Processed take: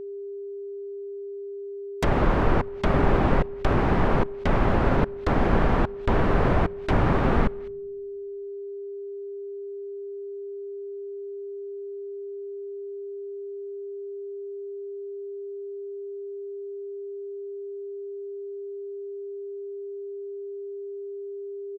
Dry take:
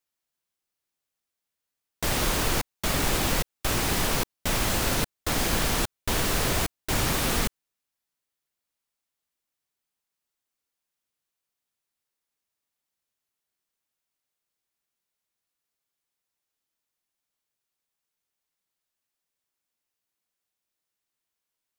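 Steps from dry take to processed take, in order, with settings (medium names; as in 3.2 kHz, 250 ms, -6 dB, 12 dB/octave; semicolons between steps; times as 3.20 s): treble shelf 3.7 kHz -9.5 dB; echo from a far wall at 35 m, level -24 dB; low-pass that closes with the level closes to 1.4 kHz, closed at -27.5 dBFS; in parallel at -6 dB: crossover distortion -46 dBFS; on the sum: whistle 400 Hz -37 dBFS; on a send at -23 dB: reverberation RT60 0.90 s, pre-delay 5 ms; on the sum: trim +3.5 dB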